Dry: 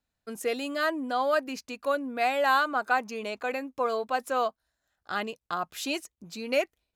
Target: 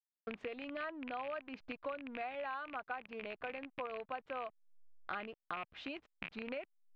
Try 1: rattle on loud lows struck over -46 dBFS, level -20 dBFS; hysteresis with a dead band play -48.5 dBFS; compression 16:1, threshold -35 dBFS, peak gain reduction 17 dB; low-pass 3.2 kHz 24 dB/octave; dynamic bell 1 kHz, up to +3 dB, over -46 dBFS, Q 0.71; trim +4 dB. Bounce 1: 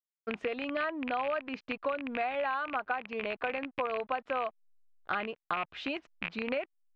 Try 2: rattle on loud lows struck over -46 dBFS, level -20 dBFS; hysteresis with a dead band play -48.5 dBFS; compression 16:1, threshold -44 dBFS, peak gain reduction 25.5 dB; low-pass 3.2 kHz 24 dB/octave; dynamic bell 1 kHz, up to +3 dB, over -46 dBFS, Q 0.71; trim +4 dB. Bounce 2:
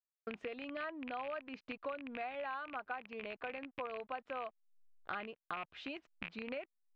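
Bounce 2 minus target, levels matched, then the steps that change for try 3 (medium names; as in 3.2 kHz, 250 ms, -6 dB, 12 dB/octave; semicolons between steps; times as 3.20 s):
hysteresis with a dead band: distortion -8 dB
change: hysteresis with a dead band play -39.5 dBFS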